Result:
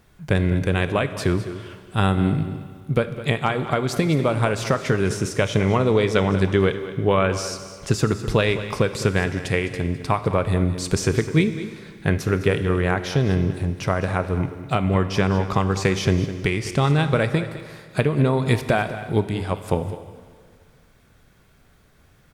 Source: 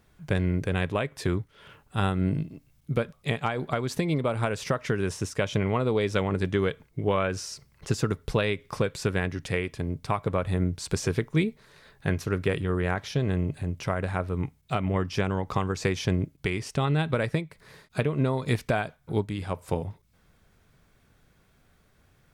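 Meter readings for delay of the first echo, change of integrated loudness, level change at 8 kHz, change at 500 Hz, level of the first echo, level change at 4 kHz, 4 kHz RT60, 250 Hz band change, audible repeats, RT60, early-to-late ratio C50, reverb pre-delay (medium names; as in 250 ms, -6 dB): 207 ms, +6.5 dB, +6.5 dB, +6.5 dB, -14.0 dB, +6.5 dB, 1.9 s, +6.5 dB, 1, 2.0 s, 10.0 dB, 28 ms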